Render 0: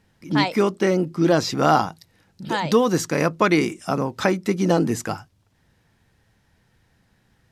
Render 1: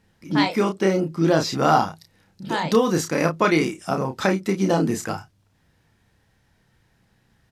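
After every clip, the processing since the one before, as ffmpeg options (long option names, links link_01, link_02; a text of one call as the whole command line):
ffmpeg -i in.wav -filter_complex "[0:a]asplit=2[link_01][link_02];[link_02]adelay=31,volume=-5.5dB[link_03];[link_01][link_03]amix=inputs=2:normalize=0,volume=-1.5dB" out.wav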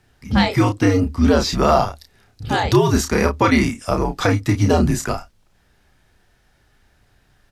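ffmpeg -i in.wav -filter_complex "[0:a]asplit=2[link_01][link_02];[link_02]alimiter=limit=-11dB:level=0:latency=1:release=116,volume=2dB[link_03];[link_01][link_03]amix=inputs=2:normalize=0,afreqshift=-87,volume=-2dB" out.wav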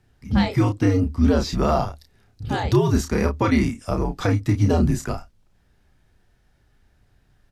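ffmpeg -i in.wav -af "lowshelf=frequency=390:gain=7.5,volume=-8dB" out.wav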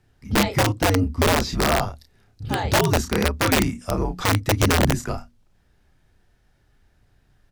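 ffmpeg -i in.wav -af "aeval=exprs='(mod(3.76*val(0)+1,2)-1)/3.76':channel_layout=same,bandreject=frequency=60:width_type=h:width=6,bandreject=frequency=120:width_type=h:width=6,bandreject=frequency=180:width_type=h:width=6,bandreject=frequency=240:width_type=h:width=6" out.wav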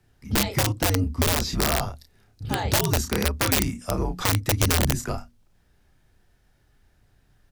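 ffmpeg -i in.wav -filter_complex "[0:a]acrossover=split=130|3000[link_01][link_02][link_03];[link_02]acompressor=threshold=-22dB:ratio=6[link_04];[link_01][link_04][link_03]amix=inputs=3:normalize=0,crystalizer=i=0.5:c=0,volume=-1dB" out.wav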